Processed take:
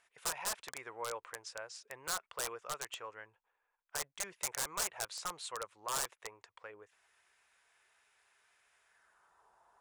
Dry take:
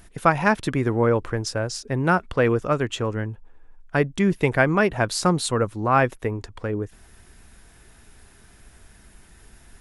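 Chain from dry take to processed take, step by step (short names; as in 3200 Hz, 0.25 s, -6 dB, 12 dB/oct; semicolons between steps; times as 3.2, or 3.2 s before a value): band-pass sweep 2200 Hz -> 980 Hz, 8.81–9.46; wrapped overs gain 25 dB; ten-band EQ 250 Hz -9 dB, 500 Hz +7 dB, 1000 Hz +7 dB, 2000 Hz -6 dB, 8000 Hz +10 dB; gain -7.5 dB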